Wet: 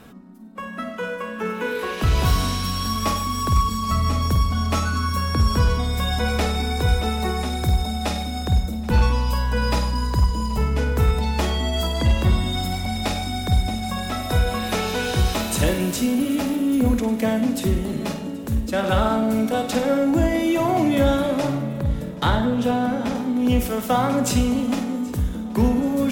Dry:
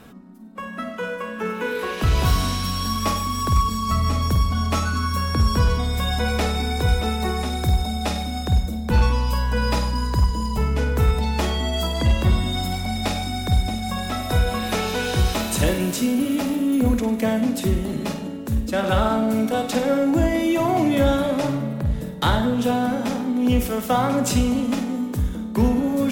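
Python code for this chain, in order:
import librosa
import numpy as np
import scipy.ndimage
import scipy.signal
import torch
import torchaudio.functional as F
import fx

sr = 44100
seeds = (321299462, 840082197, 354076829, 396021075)

y = fx.high_shelf(x, sr, hz=5400.0, db=-7.5, at=(22.02, 23.15))
y = fx.echo_feedback(y, sr, ms=779, feedback_pct=51, wet_db=-22)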